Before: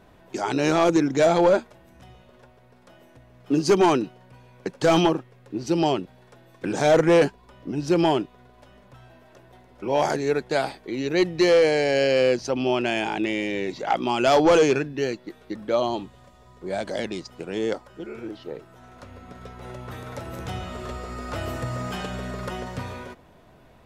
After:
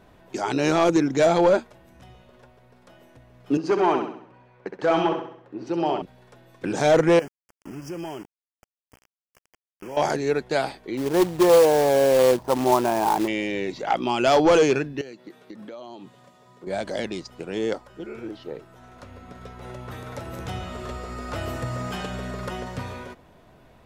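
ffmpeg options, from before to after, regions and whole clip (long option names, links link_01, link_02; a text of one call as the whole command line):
ffmpeg -i in.wav -filter_complex "[0:a]asettb=1/sr,asplit=3[link_01][link_02][link_03];[link_01]atrim=end=3.574[link_04];[link_02]atrim=start=3.57:end=6.02,asetpts=PTS-STARTPTS,afade=type=in:duration=0.004:curve=qsin,afade=type=out:start_time=2.446:duration=0.004:curve=qsin,lowpass=1500,aemphasis=mode=production:type=riaa,aecho=1:1:65|130|195|260|325|390:0.473|0.222|0.105|0.0491|0.0231|0.0109,atrim=end_sample=108045[link_05];[link_03]atrim=start=6.016[link_06];[link_04][link_05]acrossfade=duration=0.004:curve1=hsin:curve2=qsin[link_07];[link_07][link_06]acrossfade=duration=0.004:curve1=qsin:curve2=hsin,asettb=1/sr,asplit=3[link_08][link_09][link_10];[link_08]atrim=end=7.194[link_11];[link_09]atrim=start=7.19:end=9.97,asetpts=PTS-STARTPTS,afade=type=in:duration=0.004:curve=qsin,afade=type=out:start_time=2.776:duration=0.004:curve=qsin,acompressor=threshold=-37dB:ratio=2.5:attack=3.2:release=140:knee=1:detection=peak,aeval=exprs='val(0)*gte(abs(val(0)),0.00944)':channel_layout=same,asuperstop=centerf=3900:order=8:qfactor=2.5[link_12];[link_10]atrim=start=9.966[link_13];[link_11][link_12]acrossfade=duration=0.004:curve1=hsin:curve2=qsin[link_14];[link_14][link_13]acrossfade=duration=0.004:curve1=qsin:curve2=hsin,asettb=1/sr,asplit=3[link_15][link_16][link_17];[link_15]atrim=end=10.974[link_18];[link_16]atrim=start=10.97:end=13.28,asetpts=PTS-STARTPTS,afade=type=in:duration=0.004:curve=qsin,afade=type=out:start_time=2.306:duration=0.004:curve=qsin,lowpass=frequency=1000:width_type=q:width=4,acrusher=bits=3:mode=log:mix=0:aa=0.000001[link_19];[link_17]atrim=start=13.276[link_20];[link_18][link_19]acrossfade=duration=0.004:curve1=hsin:curve2=qsin[link_21];[link_21][link_20]acrossfade=duration=0.004:curve1=qsin:curve2=hsin,asettb=1/sr,asplit=3[link_22][link_23][link_24];[link_22]atrim=end=15.014[link_25];[link_23]atrim=start=15.01:end=16.67,asetpts=PTS-STARTPTS,afade=type=in:duration=0.004:curve=qsin,afade=type=out:start_time=1.656:duration=0.004:curve=qsin,highpass=frequency=130:width=0.5412,highpass=frequency=130:width=1.3066,acompressor=threshold=-36dB:ratio=8:attack=3.2:release=140:knee=1:detection=peak[link_26];[link_24]atrim=start=16.666[link_27];[link_25][link_26]acrossfade=duration=0.004:curve1=hsin:curve2=qsin[link_28];[link_28][link_27]acrossfade=duration=0.004:curve1=qsin:curve2=hsin" out.wav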